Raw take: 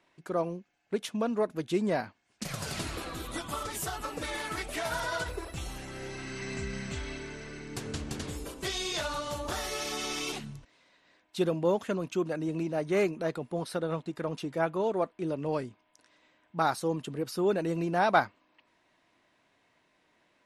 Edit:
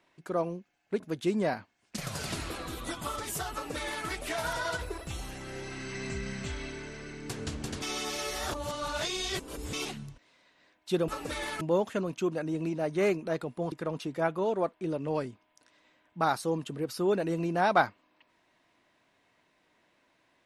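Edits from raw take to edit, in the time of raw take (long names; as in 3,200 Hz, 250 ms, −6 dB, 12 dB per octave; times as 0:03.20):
0:01.00–0:01.47: remove
0:04.00–0:04.53: duplicate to 0:11.55
0:08.29–0:10.20: reverse
0:13.66–0:14.10: remove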